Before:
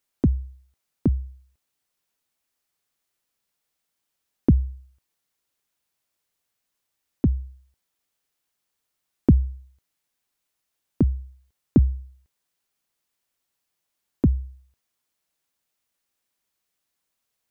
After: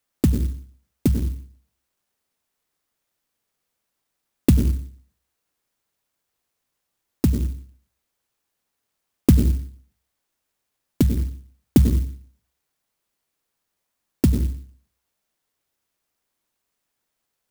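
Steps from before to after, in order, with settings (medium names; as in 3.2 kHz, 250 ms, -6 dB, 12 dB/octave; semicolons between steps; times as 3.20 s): hum notches 50/100/150/200 Hz; on a send at -7 dB: steep low-pass 610 Hz + reverberation RT60 0.50 s, pre-delay 83 ms; on the sum: sampling jitter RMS 0.092 ms; trim +2.5 dB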